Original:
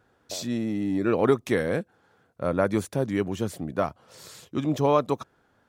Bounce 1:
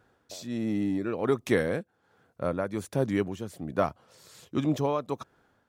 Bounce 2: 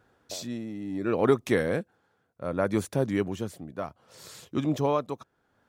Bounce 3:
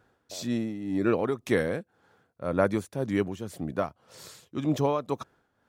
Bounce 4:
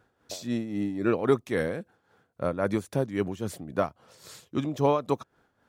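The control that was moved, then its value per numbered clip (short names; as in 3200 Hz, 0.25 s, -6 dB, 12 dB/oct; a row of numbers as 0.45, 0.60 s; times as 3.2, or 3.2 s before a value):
tremolo, rate: 1.3, 0.67, 1.9, 3.7 Hz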